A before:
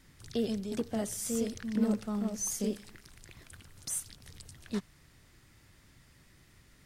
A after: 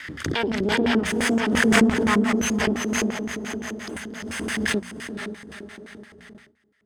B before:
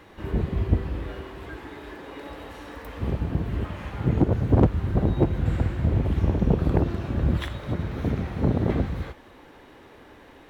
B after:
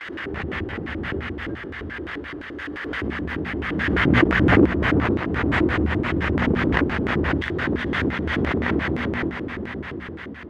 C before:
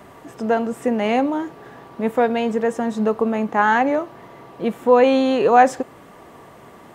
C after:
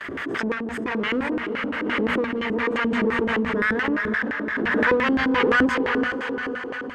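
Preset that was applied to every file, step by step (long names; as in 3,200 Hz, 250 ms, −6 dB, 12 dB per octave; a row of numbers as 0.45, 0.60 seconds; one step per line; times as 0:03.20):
lower of the sound and its delayed copy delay 0.61 ms
on a send: feedback delay with all-pass diffusion 461 ms, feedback 60%, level −3.5 dB
on the sum: auto-filter band-pass square 5.8 Hz 330–2,000 Hz
parametric band 76 Hz +10 dB 0.37 octaves
noise gate with hold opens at −51 dBFS
mains-hum notches 60/120/180/240 Hz
in parallel at −10 dB: soft clipping −25.5 dBFS
on the sum: background raised ahead of every attack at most 23 dB per second
loudness normalisation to −23 LKFS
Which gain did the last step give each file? +14.0, +7.0, +0.5 decibels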